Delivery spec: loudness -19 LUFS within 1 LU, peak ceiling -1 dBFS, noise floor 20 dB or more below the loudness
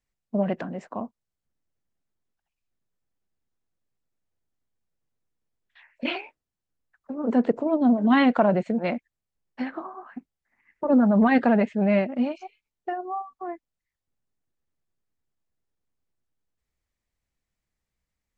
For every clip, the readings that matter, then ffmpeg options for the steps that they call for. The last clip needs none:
loudness -23.5 LUFS; peak -7.5 dBFS; loudness target -19.0 LUFS
-> -af "volume=4.5dB"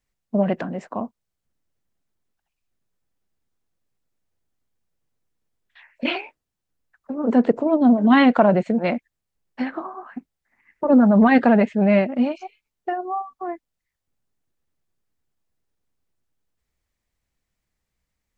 loudness -19.0 LUFS; peak -3.0 dBFS; noise floor -82 dBFS

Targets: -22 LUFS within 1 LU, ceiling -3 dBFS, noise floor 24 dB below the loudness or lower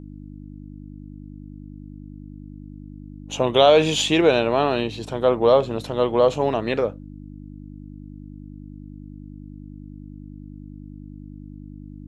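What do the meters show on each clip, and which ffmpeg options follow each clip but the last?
hum 50 Hz; harmonics up to 300 Hz; hum level -36 dBFS; loudness -19.5 LUFS; peak -3.0 dBFS; loudness target -22.0 LUFS
-> -af "bandreject=f=50:t=h:w=4,bandreject=f=100:t=h:w=4,bandreject=f=150:t=h:w=4,bandreject=f=200:t=h:w=4,bandreject=f=250:t=h:w=4,bandreject=f=300:t=h:w=4"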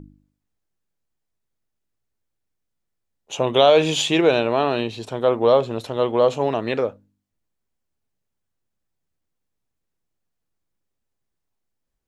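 hum none; loudness -19.5 LUFS; peak -3.0 dBFS; loudness target -22.0 LUFS
-> -af "volume=-2.5dB"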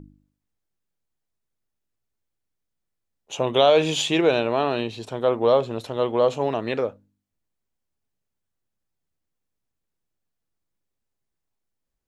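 loudness -22.0 LUFS; peak -5.5 dBFS; noise floor -81 dBFS

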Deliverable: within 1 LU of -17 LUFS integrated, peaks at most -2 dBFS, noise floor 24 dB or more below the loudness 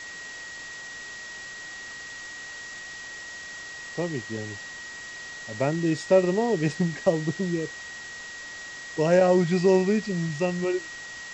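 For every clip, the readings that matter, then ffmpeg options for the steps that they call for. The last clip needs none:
steady tone 1900 Hz; tone level -38 dBFS; noise floor -40 dBFS; noise floor target -52 dBFS; loudness -27.5 LUFS; peak -8.5 dBFS; loudness target -17.0 LUFS
-> -af "bandreject=f=1.9k:w=30"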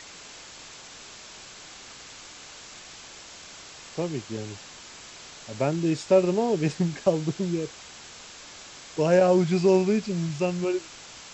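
steady tone none; noise floor -45 dBFS; noise floor target -49 dBFS
-> -af "afftdn=nr=6:nf=-45"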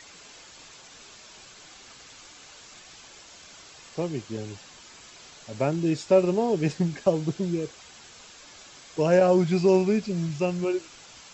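noise floor -49 dBFS; loudness -25.0 LUFS; peak -8.5 dBFS; loudness target -17.0 LUFS
-> -af "volume=8dB,alimiter=limit=-2dB:level=0:latency=1"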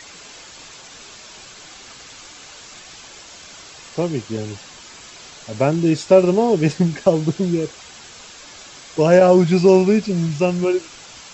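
loudness -17.0 LUFS; peak -2.0 dBFS; noise floor -41 dBFS

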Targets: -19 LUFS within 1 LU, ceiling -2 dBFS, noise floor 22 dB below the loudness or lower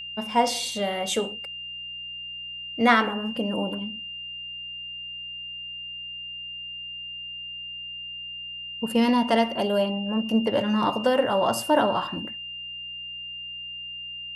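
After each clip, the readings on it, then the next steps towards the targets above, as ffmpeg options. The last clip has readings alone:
hum 60 Hz; harmonics up to 180 Hz; hum level -56 dBFS; steady tone 2800 Hz; tone level -34 dBFS; loudness -27.0 LUFS; peak -7.5 dBFS; loudness target -19.0 LUFS
-> -af "bandreject=f=60:t=h:w=4,bandreject=f=120:t=h:w=4,bandreject=f=180:t=h:w=4"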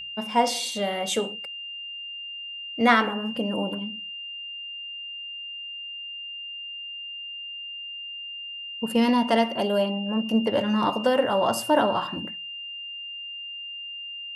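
hum none; steady tone 2800 Hz; tone level -34 dBFS
-> -af "bandreject=f=2.8k:w=30"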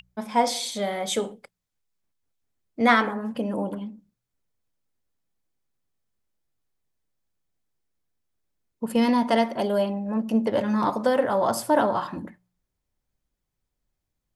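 steady tone none; loudness -24.0 LUFS; peak -7.5 dBFS; loudness target -19.0 LUFS
-> -af "volume=5dB"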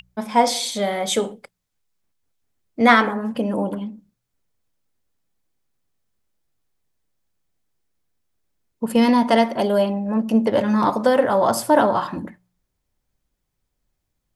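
loudness -19.0 LUFS; peak -2.5 dBFS; noise floor -77 dBFS

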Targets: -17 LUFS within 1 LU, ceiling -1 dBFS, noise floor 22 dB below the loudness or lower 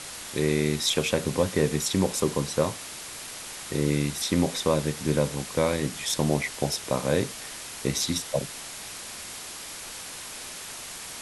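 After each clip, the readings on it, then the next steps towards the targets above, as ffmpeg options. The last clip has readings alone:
noise floor -40 dBFS; noise floor target -50 dBFS; loudness -28.0 LUFS; peak -7.0 dBFS; loudness target -17.0 LUFS
-> -af "afftdn=nr=10:nf=-40"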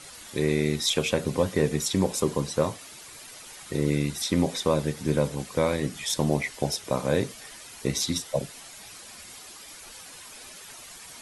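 noise floor -45 dBFS; noise floor target -49 dBFS
-> -af "afftdn=nr=6:nf=-45"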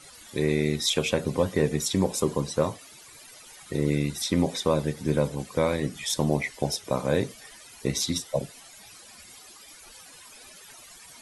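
noise floor -49 dBFS; loudness -27.0 LUFS; peak -7.5 dBFS; loudness target -17.0 LUFS
-> -af "volume=10dB,alimiter=limit=-1dB:level=0:latency=1"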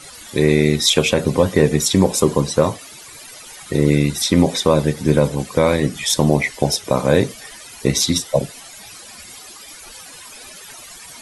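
loudness -17.0 LUFS; peak -1.0 dBFS; noise floor -39 dBFS

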